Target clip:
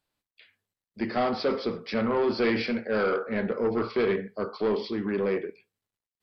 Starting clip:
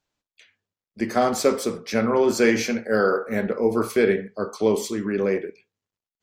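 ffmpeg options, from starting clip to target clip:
-af "asoftclip=type=tanh:threshold=-17.5dB,aresample=11025,aresample=44100,volume=-2dB" -ar 32000 -c:a sbc -b:a 192k

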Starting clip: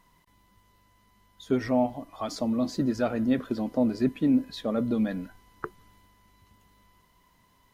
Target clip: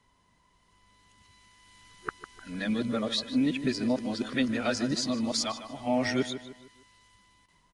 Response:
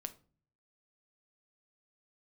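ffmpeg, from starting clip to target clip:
-filter_complex "[0:a]areverse,acrossover=split=470|1800[a][b][c];[c]dynaudnorm=f=470:g=5:m=14dB[d];[a][b][d]amix=inputs=3:normalize=0,aresample=22050,aresample=44100,asplit=2[e][f];[f]adelay=152,lowpass=f=3.4k:p=1,volume=-11dB,asplit=2[g][h];[h]adelay=152,lowpass=f=3.4k:p=1,volume=0.41,asplit=2[i][j];[j]adelay=152,lowpass=f=3.4k:p=1,volume=0.41,asplit=2[k][l];[l]adelay=152,lowpass=f=3.4k:p=1,volume=0.41[m];[e][g][i][k][m]amix=inputs=5:normalize=0,volume=-3.5dB"

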